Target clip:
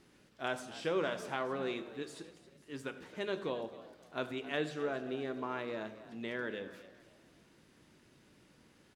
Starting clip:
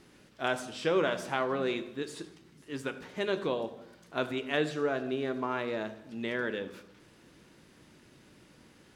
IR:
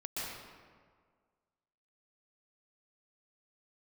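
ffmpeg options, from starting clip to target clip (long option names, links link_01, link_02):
-filter_complex "[0:a]asplit=4[link_01][link_02][link_03][link_04];[link_02]adelay=267,afreqshift=60,volume=-16dB[link_05];[link_03]adelay=534,afreqshift=120,volume=-25.9dB[link_06];[link_04]adelay=801,afreqshift=180,volume=-35.8dB[link_07];[link_01][link_05][link_06][link_07]amix=inputs=4:normalize=0,volume=-6dB"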